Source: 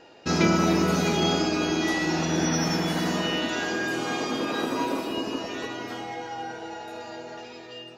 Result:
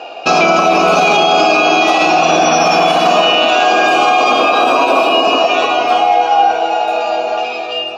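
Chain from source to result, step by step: vowel filter a; treble shelf 2.7 kHz +10 dB; loudness maximiser +32.5 dB; trim -1 dB

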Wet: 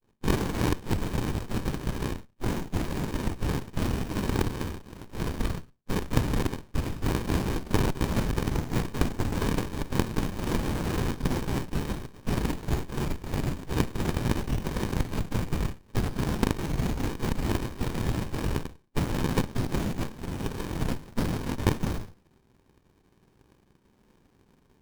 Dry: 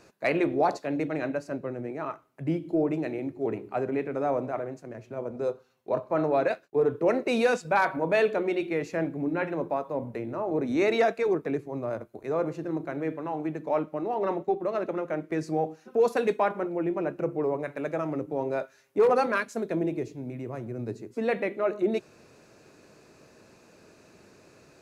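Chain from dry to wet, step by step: spectrum inverted on a logarithmic axis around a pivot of 1.5 kHz; time-frequency box 9.34–9.59 s, 1.6–5.2 kHz +9 dB; in parallel at +2.5 dB: level held to a coarse grid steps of 20 dB; on the sum: treble shelf 6.6 kHz +11 dB; hum notches 50/100/150/200/250/300/350/400/450 Hz; simulated room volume 140 m³, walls mixed, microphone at 3.7 m; integer overflow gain 5 dB; peaking EQ 3.4 kHz -7 dB 0.59 oct; power-law waveshaper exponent 2; FFT band-reject 260–2600 Hz; compression 6:1, threshold -34 dBFS, peak gain reduction 19.5 dB; sliding maximum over 65 samples; trim +8.5 dB

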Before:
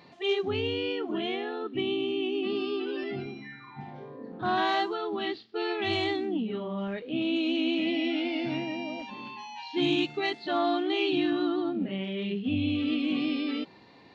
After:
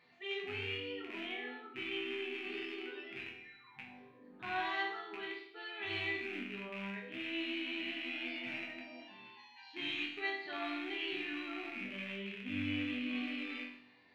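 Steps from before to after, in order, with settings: rattle on loud lows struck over -37 dBFS, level -24 dBFS; peaking EQ 2 kHz +12.5 dB 1.4 oct; chord resonator E2 minor, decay 0.69 s

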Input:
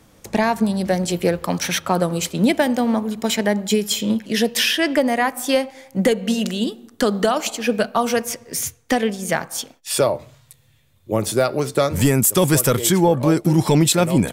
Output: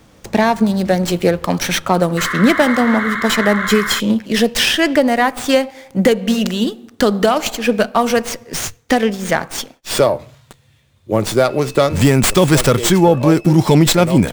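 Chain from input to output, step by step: 2.17–4.00 s: painted sound noise 1–2.2 kHz -26 dBFS; 11.49–13.49 s: whistle 2.6 kHz -45 dBFS; sliding maximum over 3 samples; trim +4.5 dB

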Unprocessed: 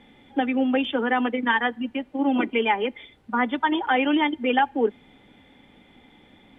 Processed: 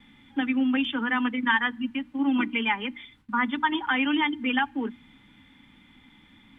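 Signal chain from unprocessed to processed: gate with hold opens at -46 dBFS; high-order bell 530 Hz -14.5 dB 1.3 oct; hum notches 60/120/180/240/300 Hz

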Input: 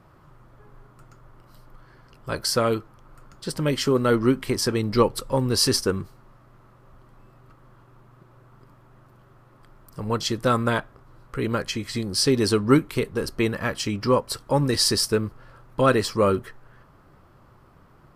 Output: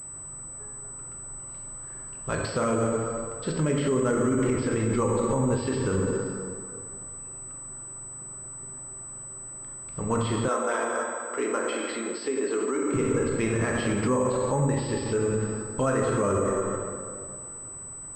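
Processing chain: plate-style reverb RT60 2.2 s, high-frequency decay 0.55×, DRR 0 dB; peak limiter -16.5 dBFS, peak gain reduction 14.5 dB; low-pass that closes with the level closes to 2.5 kHz, closed at -20.5 dBFS; 10.48–12.94 s: high-pass 310 Hz 24 dB/octave; class-D stage that switches slowly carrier 8 kHz

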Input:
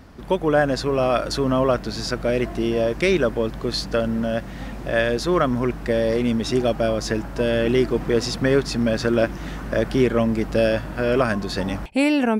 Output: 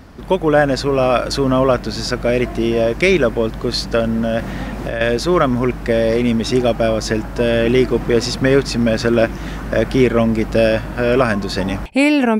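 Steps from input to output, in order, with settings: dynamic bell 2.3 kHz, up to +4 dB, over -45 dBFS, Q 7.1; 4.39–5.01 s: three bands compressed up and down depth 100%; trim +5 dB

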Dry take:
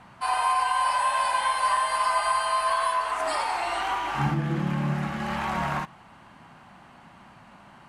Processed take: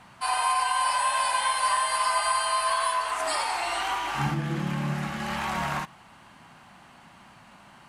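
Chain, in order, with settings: treble shelf 2.7 kHz +9 dB; trim -2.5 dB

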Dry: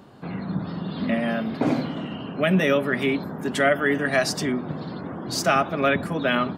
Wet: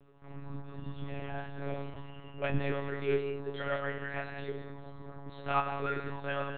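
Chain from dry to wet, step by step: feedback comb 200 Hz, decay 0.3 s, harmonics all, mix 100%; gated-style reverb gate 250 ms flat, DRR 4 dB; monotone LPC vocoder at 8 kHz 140 Hz

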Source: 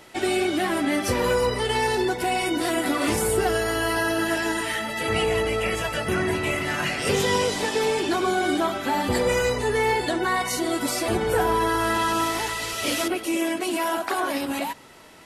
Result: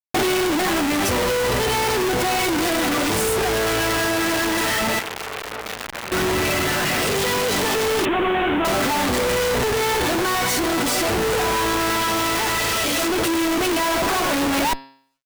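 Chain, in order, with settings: Schmitt trigger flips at -36 dBFS; de-hum 135.1 Hz, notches 38; compression 3:1, threshold -27 dBFS, peak gain reduction 3.5 dB; 8.05–8.65 s: steep low-pass 3.4 kHz 72 dB/octave; gain riding; companded quantiser 8-bit; 4.99–6.12 s: transformer saturation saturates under 2.1 kHz; trim +6.5 dB

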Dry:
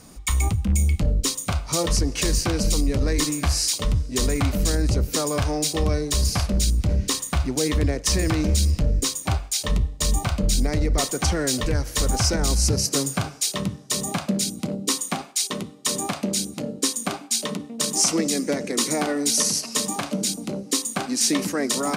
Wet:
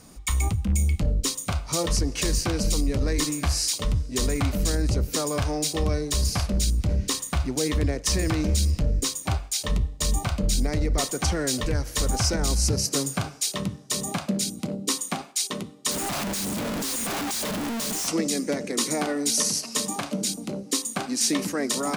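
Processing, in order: 15.91–18.08 s: one-bit comparator; trim -2.5 dB

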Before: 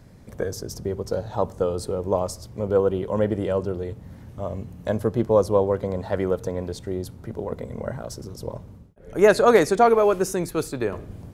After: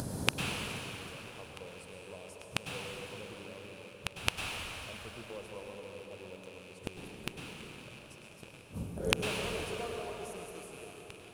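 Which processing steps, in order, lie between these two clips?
rattle on loud lows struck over -35 dBFS, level -11 dBFS; in parallel at -3 dB: compression, threshold -26 dBFS, peak gain reduction 15 dB; on the sum: peaking EQ 9.8 kHz +12.5 dB 0.54 oct; upward compressor, threshold -40 dBFS; high-pass 120 Hz 6 dB/octave; inverted gate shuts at -19 dBFS, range -36 dB; peaking EQ 2 kHz -11.5 dB 0.63 oct; plate-style reverb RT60 4.2 s, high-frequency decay 0.75×, pre-delay 90 ms, DRR 0 dB; trim +7 dB

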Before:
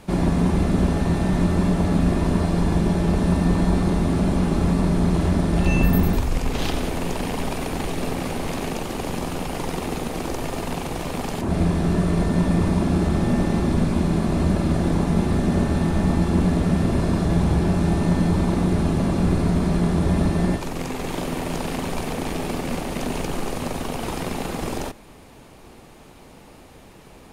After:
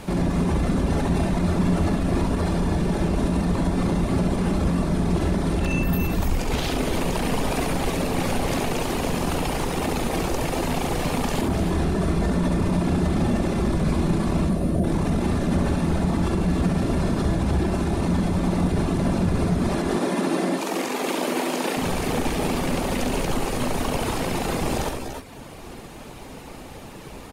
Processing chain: reverb removal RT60 0.93 s; 14.49–14.84 s: time-frequency box 740–8600 Hz -15 dB; 19.67–21.77 s: high-pass 240 Hz 24 dB/octave; peak limiter -24 dBFS, peak gain reduction 17 dB; multi-tap echo 68/290/305 ms -5.5/-9/-9.5 dB; trim +7.5 dB

